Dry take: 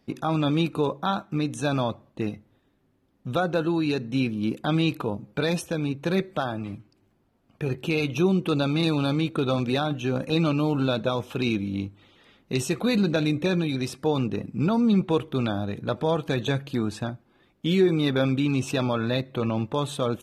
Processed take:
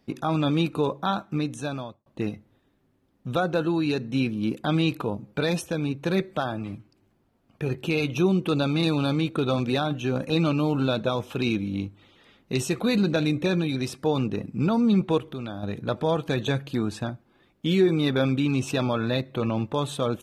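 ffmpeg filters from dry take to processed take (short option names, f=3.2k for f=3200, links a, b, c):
-filter_complex "[0:a]asettb=1/sr,asplit=3[a][b][c];[a]atrim=end=15.184[d];[b]atrim=start=15.18:end=15.63,asetpts=PTS-STARTPTS,afade=t=in:d=0.004:c=qsin,afade=t=out:st=0.446:d=0.004:c=qsin,acompressor=threshold=-36dB:ratio=2:attack=3.2:release=140:knee=1:detection=peak[e];[c]atrim=start=15.626[f];[d][e]acrossfade=d=0.004:c1=hsin:c2=qsin[g];[g][f]acrossfade=d=0.004:c1=qsin:c2=hsin,asplit=2[h][i];[h]atrim=end=2.06,asetpts=PTS-STARTPTS,afade=t=out:st=1.35:d=0.71[j];[i]atrim=start=2.06,asetpts=PTS-STARTPTS,afade=t=in:d=0.004:c=hsin[k];[j][k]concat=n=2:v=0:a=1"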